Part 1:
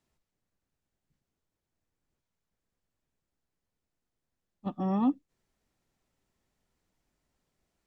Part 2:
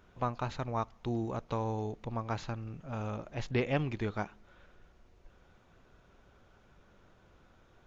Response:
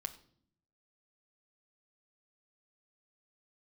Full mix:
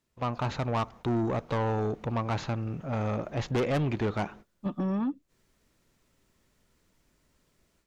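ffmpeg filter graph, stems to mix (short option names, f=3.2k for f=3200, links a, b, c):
-filter_complex "[0:a]equalizer=f=770:t=o:w=0.24:g=-10,acompressor=threshold=-36dB:ratio=6,volume=1dB[a];[1:a]highpass=f=120:p=1,agate=range=-35dB:threshold=-55dB:ratio=16:detection=peak,highshelf=f=2k:g=-7.5,volume=2.5dB[b];[a][b]amix=inputs=2:normalize=0,dynaudnorm=f=190:g=3:m=9.5dB,asoftclip=type=tanh:threshold=-23.5dB"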